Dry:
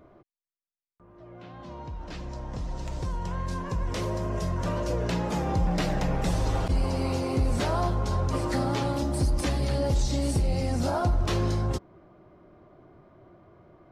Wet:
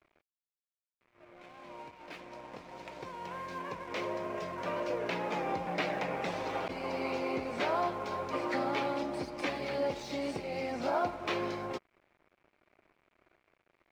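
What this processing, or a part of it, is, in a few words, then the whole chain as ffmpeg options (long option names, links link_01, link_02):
pocket radio on a weak battery: -af "highpass=350,lowpass=3500,aeval=exprs='sgn(val(0))*max(abs(val(0))-0.002,0)':channel_layout=same,equalizer=frequency=2300:width_type=o:width=0.32:gain=8,volume=-1.5dB"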